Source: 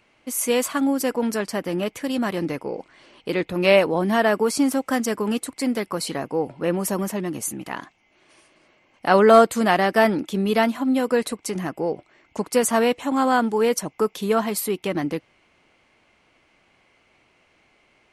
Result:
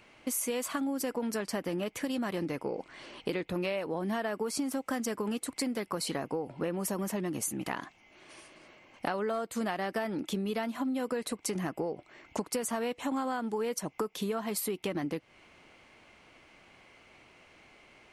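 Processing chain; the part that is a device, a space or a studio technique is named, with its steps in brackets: serial compression, leveller first (compressor 2:1, threshold -21 dBFS, peak gain reduction 8 dB; compressor 6:1, threshold -34 dBFS, peak gain reduction 17.5 dB); gain +3 dB

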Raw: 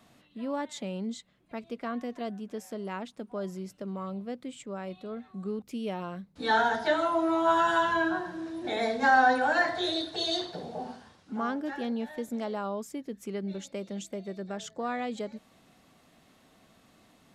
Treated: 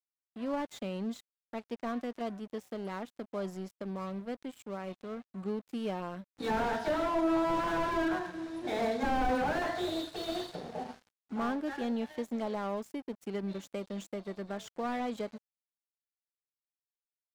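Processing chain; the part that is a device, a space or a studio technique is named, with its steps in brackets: early transistor amplifier (crossover distortion -47.5 dBFS; slew limiter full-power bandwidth 29 Hz)

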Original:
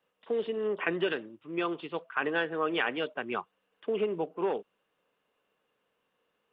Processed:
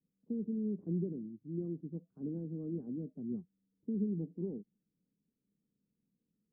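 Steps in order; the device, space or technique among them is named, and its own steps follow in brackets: the neighbour's flat through the wall (LPF 260 Hz 24 dB/oct; bell 190 Hz +7 dB 0.99 oct); 3.36–4.13 bell 890 Hz -4.5 dB 1.6 oct; gain +1.5 dB

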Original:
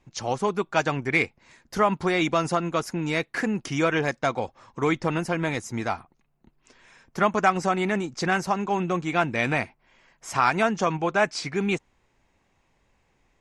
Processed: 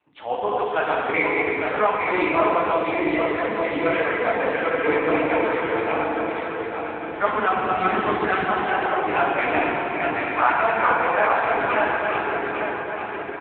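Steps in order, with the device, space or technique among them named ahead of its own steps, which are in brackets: regenerating reverse delay 0.426 s, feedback 71%, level -2.5 dB; 7.25–8.7 fifteen-band EQ 100 Hz +9 dB, 250 Hz +10 dB, 630 Hz -5 dB, 4000 Hz +5 dB; FDN reverb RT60 2.7 s, high-frequency decay 0.8×, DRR -4 dB; 2.72–3.89 dynamic EQ 1400 Hz, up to -3 dB, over -27 dBFS, Q 0.73; satellite phone (BPF 400–3300 Hz; echo 0.508 s -16.5 dB; AMR-NB 6.7 kbps 8000 Hz)

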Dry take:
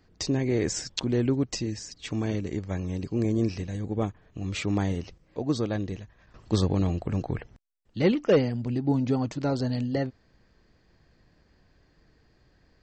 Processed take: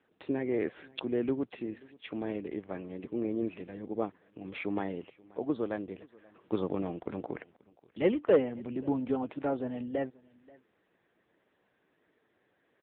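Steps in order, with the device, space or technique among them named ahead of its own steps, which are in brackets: satellite phone (BPF 310–3200 Hz; echo 0.532 s -24 dB; gain -1 dB; AMR-NB 6.7 kbps 8000 Hz)

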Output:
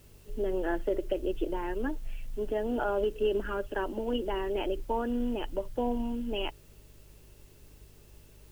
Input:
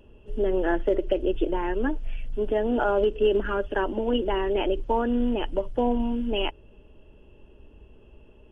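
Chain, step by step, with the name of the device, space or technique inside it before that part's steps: video cassette with head-switching buzz (buzz 50 Hz, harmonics 3, -51 dBFS -5 dB/oct; white noise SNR 31 dB); gain -6.5 dB

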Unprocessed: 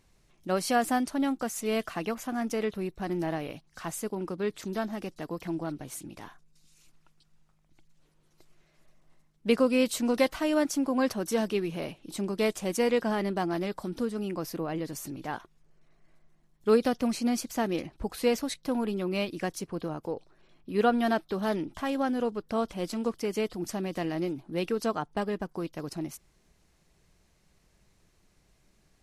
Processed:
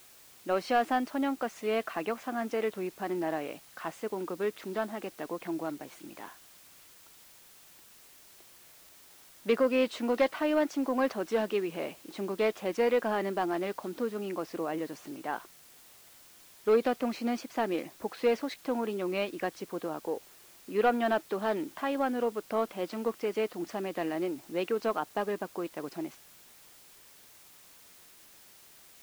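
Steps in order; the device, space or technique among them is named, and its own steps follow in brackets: tape answering machine (BPF 310–2900 Hz; soft clip -17.5 dBFS, distortion -19 dB; wow and flutter 29 cents; white noise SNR 23 dB); gain +1.5 dB

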